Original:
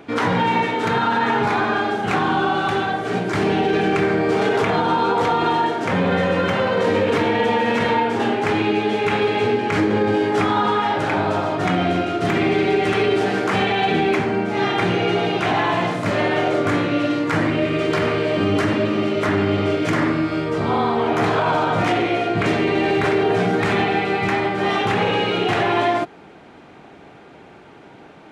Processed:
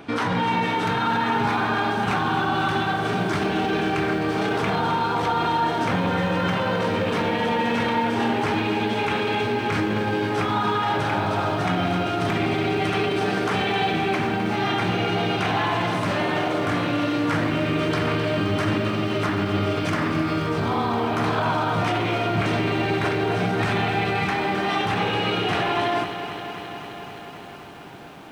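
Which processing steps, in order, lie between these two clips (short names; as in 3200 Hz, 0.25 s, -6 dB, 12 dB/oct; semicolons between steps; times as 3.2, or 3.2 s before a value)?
bell 2000 Hz -3.5 dB 0.42 oct; limiter -17 dBFS, peak gain reduction 7 dB; bell 440 Hz -5 dB 1.5 oct; notch 7000 Hz, Q 11; lo-fi delay 0.262 s, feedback 80%, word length 9-bit, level -10.5 dB; gain +3 dB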